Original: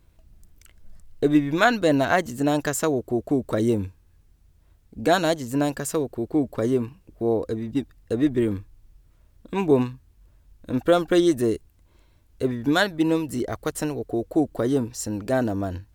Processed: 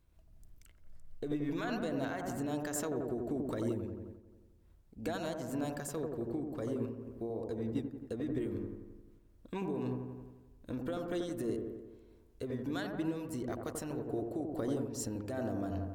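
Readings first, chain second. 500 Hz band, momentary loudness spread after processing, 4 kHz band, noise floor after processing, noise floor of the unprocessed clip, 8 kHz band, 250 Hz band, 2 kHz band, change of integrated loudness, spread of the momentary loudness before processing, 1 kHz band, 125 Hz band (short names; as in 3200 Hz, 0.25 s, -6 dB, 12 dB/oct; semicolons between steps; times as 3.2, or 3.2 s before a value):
-14.5 dB, 9 LU, -17.5 dB, -63 dBFS, -59 dBFS, -11.5 dB, -13.5 dB, -18.5 dB, -14.5 dB, 10 LU, -16.5 dB, -11.5 dB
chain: limiter -16 dBFS, peak gain reduction 11 dB; compressor, threshold -24 dBFS, peak gain reduction 5.5 dB; dark delay 88 ms, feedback 63%, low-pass 1200 Hz, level -3 dB; noise-modulated level, depth 60%; gain -7.5 dB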